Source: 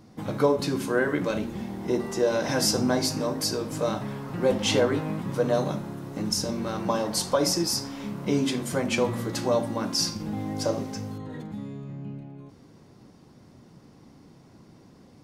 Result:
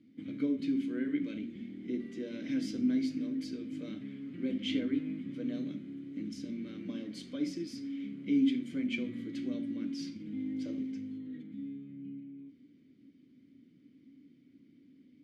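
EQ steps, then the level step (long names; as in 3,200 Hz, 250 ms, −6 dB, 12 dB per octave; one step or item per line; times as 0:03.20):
formant filter i
low-shelf EQ 120 Hz +6.5 dB
notch filter 5,500 Hz, Q 16
0.0 dB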